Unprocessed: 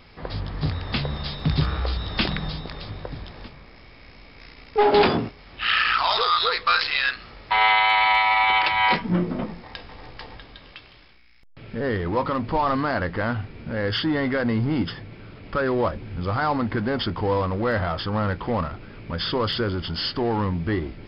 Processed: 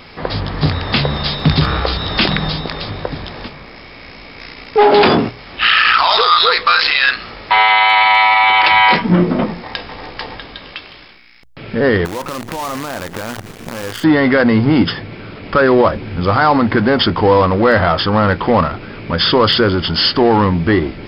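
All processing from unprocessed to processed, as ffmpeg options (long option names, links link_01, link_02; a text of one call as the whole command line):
ffmpeg -i in.wav -filter_complex "[0:a]asettb=1/sr,asplit=3[link_01][link_02][link_03];[link_01]atrim=end=12.054[link_04];[link_02]atrim=start=12.05:end=14.04,asetpts=PTS-STARTPTS,afade=type=in:duration=0.004:curve=qsin,afade=type=out:start_time=1.986:duration=0.004:curve=qsin,lowpass=frequency=1700:poles=1,acrusher=bits=5:dc=4:mix=0:aa=0.000001,acompressor=threshold=-32dB:ratio=16:attack=3.2:release=140:knee=1:detection=peak[link_05];[link_03]atrim=start=14.036[link_06];[link_04][link_05]acrossfade=duration=0.004:curve1=hsin:curve2=qsin[link_07];[link_07][link_06]acrossfade=duration=0.004:curve1=qsin:curve2=hsin,lowshelf=frequency=100:gain=-9.5,bandreject=frequency=60:width_type=h:width=6,bandreject=frequency=120:width_type=h:width=6,alimiter=level_in=14.5dB:limit=-1dB:release=50:level=0:latency=1,volume=-1dB" out.wav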